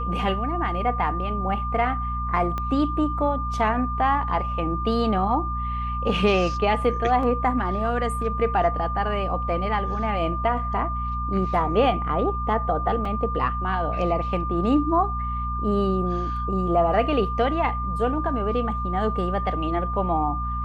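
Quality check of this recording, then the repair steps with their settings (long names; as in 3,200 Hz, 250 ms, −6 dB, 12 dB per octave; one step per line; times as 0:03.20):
mains hum 60 Hz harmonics 4 −29 dBFS
whistle 1,200 Hz −28 dBFS
0:02.58: click −16 dBFS
0:07.23: drop-out 2.6 ms
0:13.05: drop-out 3.4 ms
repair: click removal
hum removal 60 Hz, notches 4
notch filter 1,200 Hz, Q 30
repair the gap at 0:07.23, 2.6 ms
repair the gap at 0:13.05, 3.4 ms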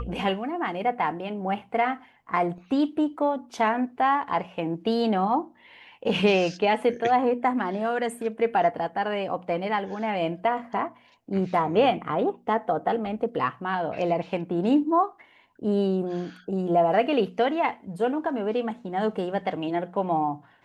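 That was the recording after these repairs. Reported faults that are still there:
0:02.58: click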